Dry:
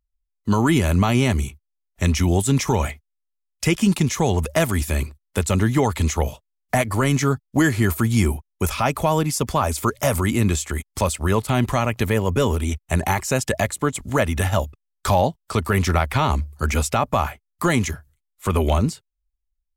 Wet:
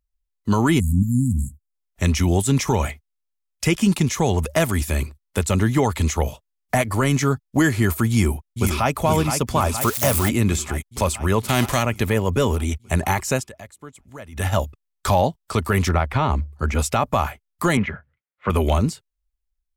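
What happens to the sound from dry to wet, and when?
0.8–1.73 spectral delete 300–6700 Hz
8.09–8.94 echo throw 0.47 s, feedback 70%, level -6.5 dB
9.81–10.29 switching spikes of -16 dBFS
11.42–11.82 spectral whitening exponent 0.6
13.34–14.47 dip -18.5 dB, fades 0.15 s
15.89–16.79 LPF 2000 Hz 6 dB/oct
17.77–18.5 speaker cabinet 110–2700 Hz, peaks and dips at 200 Hz +5 dB, 310 Hz -8 dB, 540 Hz +6 dB, 1400 Hz +5 dB, 2000 Hz +5 dB

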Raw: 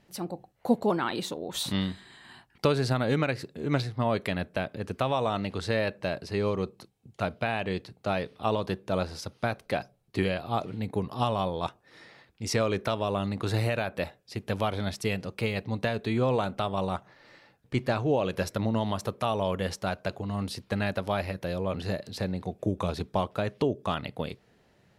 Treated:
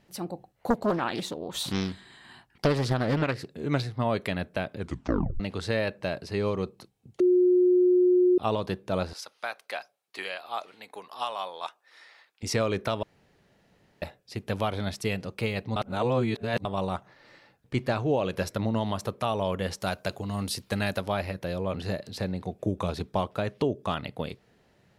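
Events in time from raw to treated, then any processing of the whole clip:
0.7–3.51 Doppler distortion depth 0.82 ms
4.77 tape stop 0.63 s
7.2–8.38 bleep 361 Hz -17 dBFS
9.13–12.43 HPF 850 Hz
13.03–14.02 room tone
15.76–16.65 reverse
19.8–21.02 high shelf 4800 Hz +11.5 dB

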